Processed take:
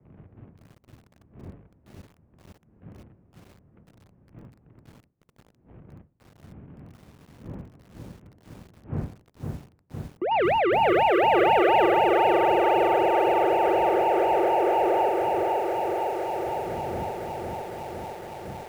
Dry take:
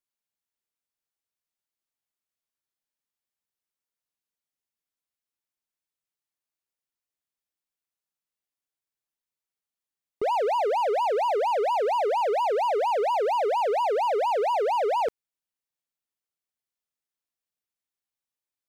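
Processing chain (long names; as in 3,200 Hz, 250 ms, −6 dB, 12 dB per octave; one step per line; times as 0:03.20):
0:10.31–0:11.86: each half-wave held at its own peak
wind on the microphone 130 Hz −36 dBFS
in parallel at −11 dB: centre clipping without the shift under −35.5 dBFS
on the sum: high-frequency loss of the air 81 metres
single-sideband voice off tune −62 Hz 160–2,800 Hz
feedback echo at a low word length 508 ms, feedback 80%, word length 8 bits, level −3 dB
level −3.5 dB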